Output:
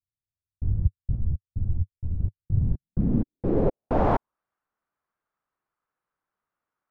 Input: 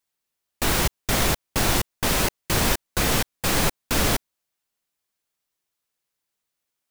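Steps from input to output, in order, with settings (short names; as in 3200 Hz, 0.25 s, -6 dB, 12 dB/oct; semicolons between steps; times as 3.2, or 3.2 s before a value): low-pass sweep 100 Hz -> 1300 Hz, 2.49–4.39; 1.16–2.2 ensemble effect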